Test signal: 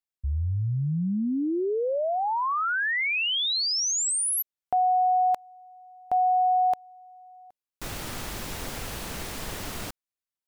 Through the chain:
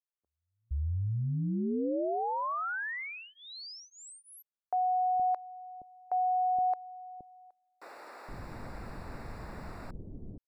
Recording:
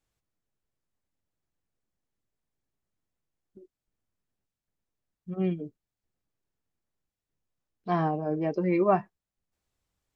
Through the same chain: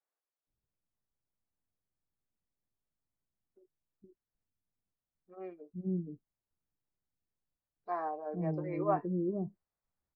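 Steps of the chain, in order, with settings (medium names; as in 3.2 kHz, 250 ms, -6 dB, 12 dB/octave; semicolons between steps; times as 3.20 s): boxcar filter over 14 samples; bands offset in time highs, lows 470 ms, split 410 Hz; trim -5 dB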